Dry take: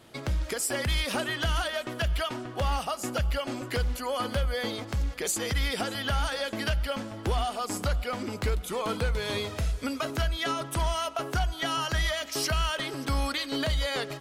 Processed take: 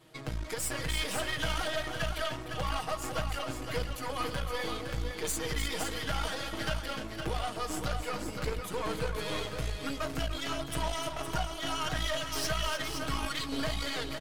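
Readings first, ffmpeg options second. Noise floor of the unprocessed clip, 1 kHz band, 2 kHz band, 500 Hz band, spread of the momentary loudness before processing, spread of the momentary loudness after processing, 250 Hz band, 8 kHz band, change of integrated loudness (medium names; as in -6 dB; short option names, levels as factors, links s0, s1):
-42 dBFS, -3.5 dB, -3.5 dB, -4.0 dB, 4 LU, 4 LU, -4.0 dB, -3.5 dB, -4.5 dB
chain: -filter_complex "[0:a]aecho=1:1:6.4:0.91,flanger=delay=5.4:depth=9.6:regen=-69:speed=1.5:shape=sinusoidal,aeval=exprs='0.126*(cos(1*acos(clip(val(0)/0.126,-1,1)))-cos(1*PI/2))+0.0158*(cos(6*acos(clip(val(0)/0.126,-1,1)))-cos(6*PI/2))':c=same,asplit=2[s0][s1];[s1]aecho=0:1:301|513:0.335|0.447[s2];[s0][s2]amix=inputs=2:normalize=0,volume=0.668"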